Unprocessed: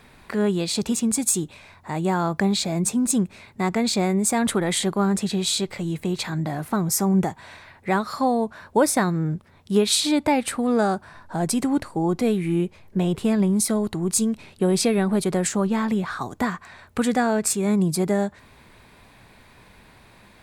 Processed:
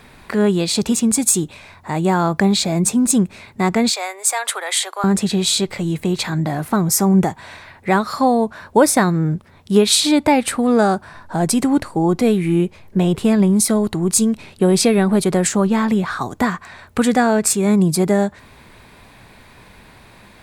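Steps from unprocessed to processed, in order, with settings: 3.9–5.04 Bessel high-pass 880 Hz, order 8; gain +6 dB

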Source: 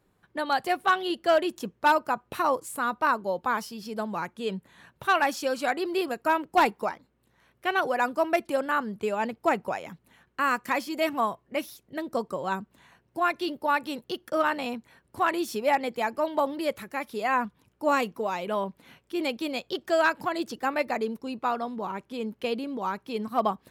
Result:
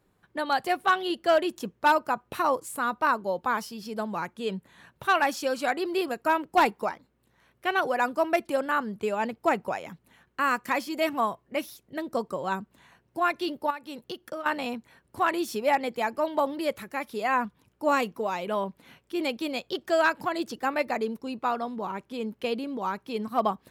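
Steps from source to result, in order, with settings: 13.7–14.46 compressor 10:1, threshold -33 dBFS, peak gain reduction 14 dB

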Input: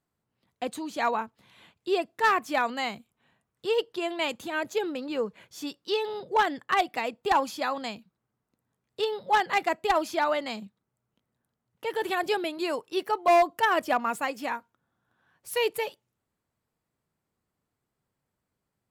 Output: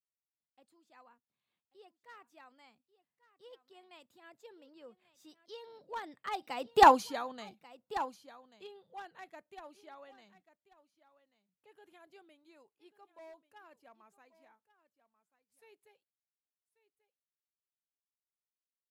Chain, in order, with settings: Doppler pass-by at 6.85, 23 m/s, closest 1.6 m; dynamic EQ 2300 Hz, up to -4 dB, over -57 dBFS, Q 1.5; echo 1.138 s -16.5 dB; gain +5.5 dB

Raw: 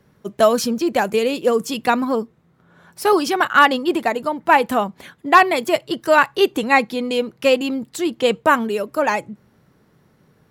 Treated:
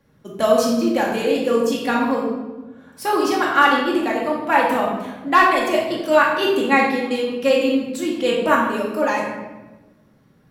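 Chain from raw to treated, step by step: shoebox room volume 630 m³, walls mixed, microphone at 2.3 m; gain -6.5 dB

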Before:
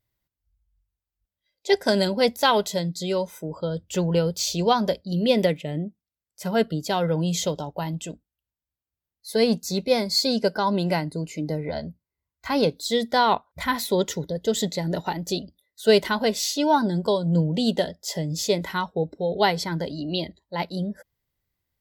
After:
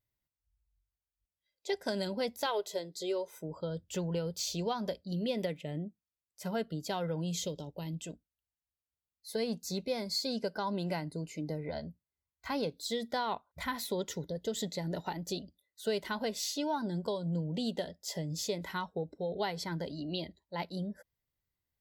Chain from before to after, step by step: 2.46–3.36 resonant low shelf 290 Hz -9 dB, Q 3; compressor 3:1, threshold -23 dBFS, peak gain reduction 8 dB; 7.31–8.01 band shelf 1100 Hz -10 dB; gain -8.5 dB

